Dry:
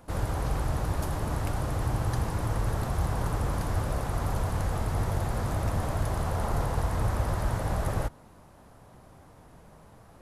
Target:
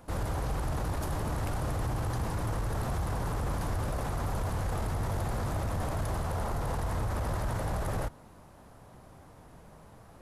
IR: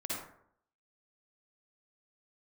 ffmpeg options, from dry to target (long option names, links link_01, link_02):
-af "alimiter=level_in=0.5dB:limit=-24dB:level=0:latency=1:release=11,volume=-0.5dB"